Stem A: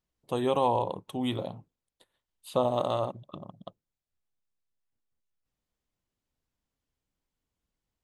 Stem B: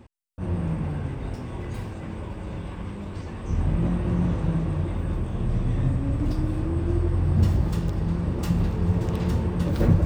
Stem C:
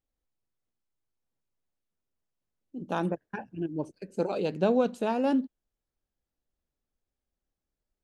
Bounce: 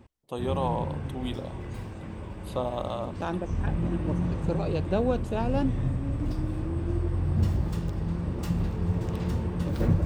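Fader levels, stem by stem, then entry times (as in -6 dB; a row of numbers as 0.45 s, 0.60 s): -4.0 dB, -4.5 dB, -2.0 dB; 0.00 s, 0.00 s, 0.30 s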